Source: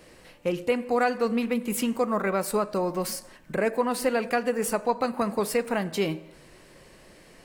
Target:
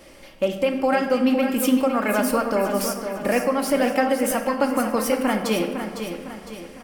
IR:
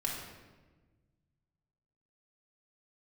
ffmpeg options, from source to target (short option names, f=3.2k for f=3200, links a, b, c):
-filter_complex "[0:a]aecho=1:1:4:0.3,alimiter=limit=-15dB:level=0:latency=1:release=176,aecho=1:1:551|1102|1653|2204|2755:0.376|0.169|0.0761|0.0342|0.0154,asplit=2[a][b];[1:a]atrim=start_sample=2205[c];[b][c]afir=irnorm=-1:irlink=0,volume=-4.5dB[d];[a][d]amix=inputs=2:normalize=0,asetrate=48000,aresample=44100"